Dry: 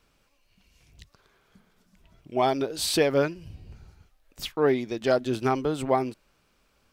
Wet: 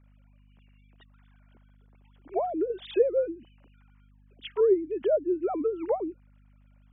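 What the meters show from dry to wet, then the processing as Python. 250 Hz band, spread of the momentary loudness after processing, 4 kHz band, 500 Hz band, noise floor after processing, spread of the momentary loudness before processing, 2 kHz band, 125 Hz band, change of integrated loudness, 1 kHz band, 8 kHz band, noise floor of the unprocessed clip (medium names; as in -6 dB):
-3.5 dB, 12 LU, -13.5 dB, 0.0 dB, -58 dBFS, 11 LU, -16.5 dB, under -20 dB, -2.0 dB, -7.5 dB, under -40 dB, -68 dBFS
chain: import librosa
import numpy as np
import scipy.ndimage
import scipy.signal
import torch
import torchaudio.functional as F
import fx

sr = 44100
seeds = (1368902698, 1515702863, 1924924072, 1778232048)

y = fx.sine_speech(x, sr)
y = fx.add_hum(y, sr, base_hz=50, snr_db=31)
y = fx.env_lowpass_down(y, sr, base_hz=470.0, full_db=-23.0)
y = y * librosa.db_to_amplitude(1.5)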